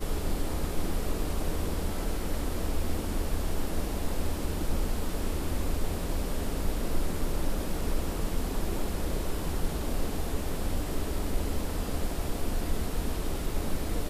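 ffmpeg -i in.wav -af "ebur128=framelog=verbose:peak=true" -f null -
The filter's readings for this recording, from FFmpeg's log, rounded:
Integrated loudness:
  I:         -33.8 LUFS
  Threshold: -43.8 LUFS
Loudness range:
  LRA:         0.4 LU
  Threshold: -53.8 LUFS
  LRA low:   -34.0 LUFS
  LRA high:  -33.6 LUFS
True peak:
  Peak:      -15.3 dBFS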